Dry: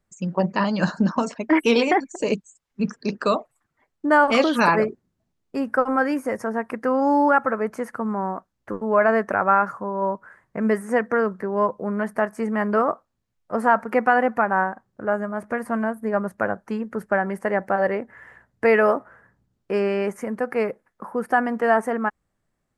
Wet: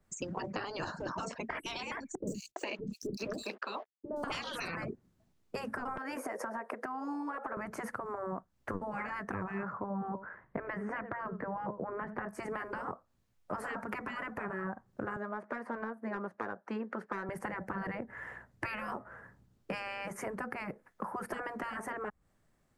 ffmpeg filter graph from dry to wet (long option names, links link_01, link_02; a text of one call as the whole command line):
ffmpeg -i in.wav -filter_complex "[0:a]asettb=1/sr,asplit=3[link_01][link_02][link_03];[link_01]atrim=end=2.154[link_04];[link_02]atrim=start=2.15:end=4.24,asetpts=PTS-STARTPTS,afade=type=in:duration=0.004:curve=qsin,afade=type=out:start_time=2.086:duration=0.004:curve=qsin,aeval=exprs='sgn(val(0))*max(abs(val(0))-0.00335,0)':channel_layout=same,acrossover=split=390|4800[link_05][link_06][link_07];[link_07]adelay=120[link_08];[link_06]adelay=410[link_09];[link_05][link_09][link_08]amix=inputs=3:normalize=0,atrim=end_sample=92169[link_10];[link_03]atrim=start=4.236[link_11];[link_04][link_10]acrossfade=duration=0.004:curve1=hsin:curve2=qsin[link_12];[link_12][link_11]acrossfade=duration=0.004:curve1=qsin:curve2=hsin,asettb=1/sr,asplit=3[link_13][link_14][link_15];[link_13]atrim=end=5.974[link_16];[link_14]atrim=start=5.97:end=7.57,asetpts=PTS-STARTPTS,afade=type=in:duration=0.004:curve=qsin,afade=type=out:start_time=1.596:duration=0.004:curve=qsin,highpass=frequency=510:width_type=q:width=3.7,acompressor=threshold=-22dB:ratio=3:attack=3.2:release=140:knee=1:detection=peak[link_17];[link_15]atrim=start=7.566[link_18];[link_16][link_17]acrossfade=duration=0.004:curve1=hsin:curve2=qsin[link_19];[link_19][link_18]acrossfade=duration=0.004:curve1=qsin:curve2=hsin,asettb=1/sr,asplit=3[link_20][link_21][link_22];[link_20]atrim=end=9.634[link_23];[link_21]atrim=start=9.63:end=12.29,asetpts=PTS-STARTPTS,afade=type=in:duration=0.004:curve=qsin,afade=type=out:start_time=2.656:duration=0.004:curve=qsin,lowpass=2100,aecho=1:1:88:0.0668,atrim=end_sample=117306[link_24];[link_22]atrim=start=12.286[link_25];[link_23][link_24]acrossfade=duration=0.004:curve1=hsin:curve2=qsin[link_26];[link_26][link_25]acrossfade=duration=0.004:curve1=qsin:curve2=hsin,asettb=1/sr,asplit=3[link_27][link_28][link_29];[link_27]atrim=end=15.164[link_30];[link_28]atrim=start=15.16:end=17.29,asetpts=PTS-STARTPTS,afade=type=in:duration=0.004:curve=qsin,afade=type=out:start_time=2.126:duration=0.004:curve=qsin,highpass=390,highshelf=frequency=5300:gain=-10,adynamicsmooth=sensitivity=6.5:basefreq=6300[link_31];[link_29]atrim=start=17.286[link_32];[link_30][link_31]acrossfade=duration=0.004:curve1=hsin:curve2=qsin[link_33];[link_33][link_32]acrossfade=duration=0.004:curve1=qsin:curve2=hsin,afftfilt=real='re*lt(hypot(re,im),0.251)':imag='im*lt(hypot(re,im),0.251)':win_size=1024:overlap=0.75,acrossover=split=150[link_34][link_35];[link_35]acompressor=threshold=-38dB:ratio=10[link_36];[link_34][link_36]amix=inputs=2:normalize=0,adynamicequalizer=threshold=0.00224:dfrequency=1700:dqfactor=0.7:tfrequency=1700:tqfactor=0.7:attack=5:release=100:ratio=0.375:range=2:mode=cutabove:tftype=highshelf,volume=3dB" out.wav